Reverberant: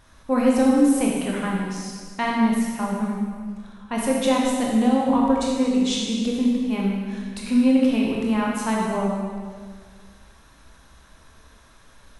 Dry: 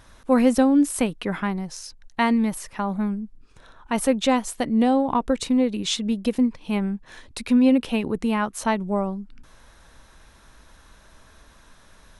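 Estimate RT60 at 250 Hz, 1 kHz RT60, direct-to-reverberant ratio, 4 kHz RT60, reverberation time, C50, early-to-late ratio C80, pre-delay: 1.9 s, 1.7 s, −3.0 dB, 1.6 s, 1.8 s, −0.5 dB, 1.5 dB, 18 ms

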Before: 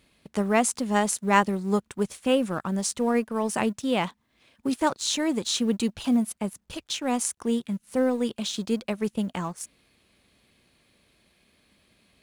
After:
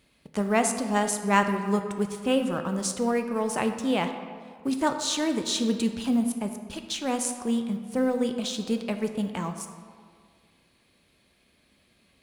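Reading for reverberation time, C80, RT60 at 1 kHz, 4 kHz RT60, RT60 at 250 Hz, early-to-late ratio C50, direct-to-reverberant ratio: 1.9 s, 9.0 dB, 2.0 s, 1.1 s, 1.9 s, 8.0 dB, 6.0 dB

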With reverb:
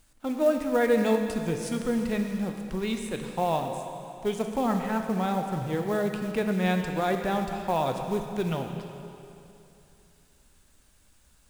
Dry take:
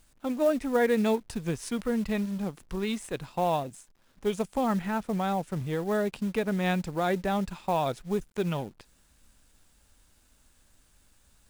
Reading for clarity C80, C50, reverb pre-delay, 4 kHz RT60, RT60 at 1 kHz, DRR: 6.0 dB, 5.0 dB, 15 ms, 2.5 s, 2.8 s, 4.0 dB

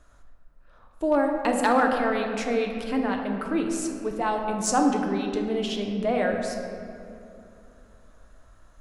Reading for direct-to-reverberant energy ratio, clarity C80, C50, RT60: 2.0 dB, 5.0 dB, 4.0 dB, 2.7 s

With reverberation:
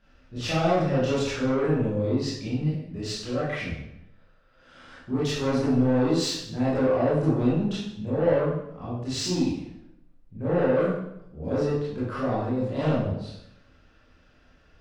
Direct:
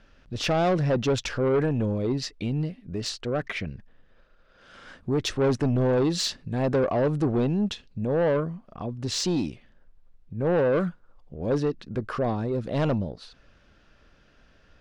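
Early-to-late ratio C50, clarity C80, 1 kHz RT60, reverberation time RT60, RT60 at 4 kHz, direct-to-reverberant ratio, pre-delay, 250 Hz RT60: −0.5 dB, 4.0 dB, 0.80 s, 0.80 s, 0.65 s, −11.0 dB, 20 ms, 0.90 s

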